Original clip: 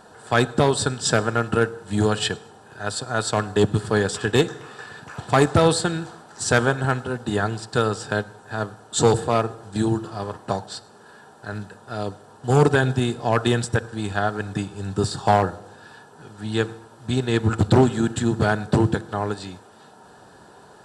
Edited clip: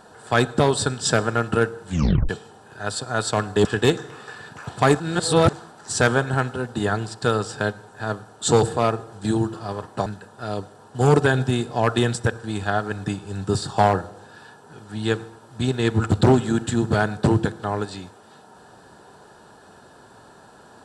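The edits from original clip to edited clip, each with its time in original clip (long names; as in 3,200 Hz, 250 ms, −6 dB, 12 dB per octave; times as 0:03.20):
0:01.89: tape stop 0.40 s
0:03.65–0:04.16: remove
0:05.51–0:06.04: reverse
0:10.57–0:11.55: remove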